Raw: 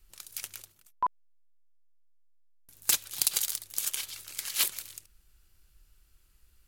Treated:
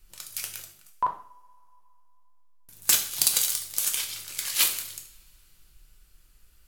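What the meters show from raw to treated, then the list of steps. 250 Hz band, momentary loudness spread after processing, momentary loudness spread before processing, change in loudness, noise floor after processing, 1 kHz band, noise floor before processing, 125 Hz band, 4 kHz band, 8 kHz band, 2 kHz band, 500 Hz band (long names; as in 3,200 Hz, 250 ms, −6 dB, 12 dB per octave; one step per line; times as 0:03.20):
+5.0 dB, 15 LU, 16 LU, +5.0 dB, −59 dBFS, +3.5 dB, −65 dBFS, +6.0 dB, +5.5 dB, +5.5 dB, +5.5 dB, +5.5 dB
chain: coupled-rooms reverb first 0.49 s, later 3 s, from −28 dB, DRR 2.5 dB
level +3.5 dB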